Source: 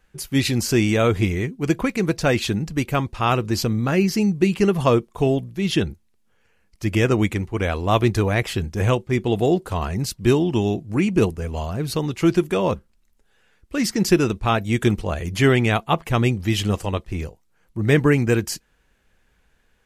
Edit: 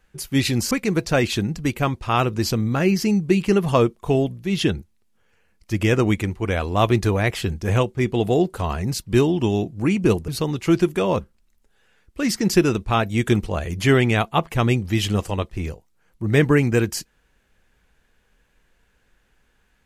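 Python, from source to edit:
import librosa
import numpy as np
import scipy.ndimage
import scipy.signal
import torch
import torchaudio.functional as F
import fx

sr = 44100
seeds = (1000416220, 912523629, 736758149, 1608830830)

y = fx.edit(x, sr, fx.cut(start_s=0.71, length_s=1.12),
    fx.cut(start_s=11.4, length_s=0.43), tone=tone)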